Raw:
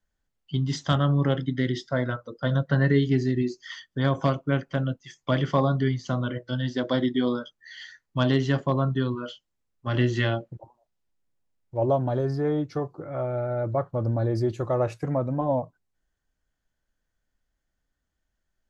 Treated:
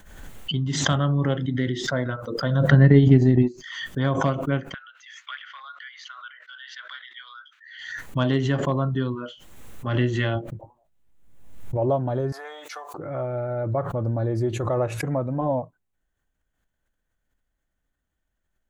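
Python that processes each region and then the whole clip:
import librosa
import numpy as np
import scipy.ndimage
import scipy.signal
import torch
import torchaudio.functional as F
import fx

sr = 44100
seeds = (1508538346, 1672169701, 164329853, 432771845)

y = fx.chain(x, sr, fx.low_shelf(hz=290.0, db=10.0),
    fx.transient(attack_db=4, sustain_db=-9), at=(2.72, 3.64))
y = fx.chain(y, sr, fx.cheby1_highpass(hz=1400.0, order=4),
    fx.air_absorb(metres=230.0), at=(4.74, 7.79))
y = fx.chain(y, sr, fx.low_shelf(hz=200.0, db=7.0),
    fx.doubler(ms=20.0, db=-8.5), at=(10.35, 11.77))
y = fx.chain(y, sr, fx.highpass(hz=720.0, slope=24),
    fx.high_shelf(hz=4000.0, db=12.0),
    fx.band_squash(depth_pct=70), at=(12.32, 12.94))
y = fx.peak_eq(y, sr, hz=5000.0, db=-10.0, octaves=0.49)
y = fx.pre_swell(y, sr, db_per_s=48.0)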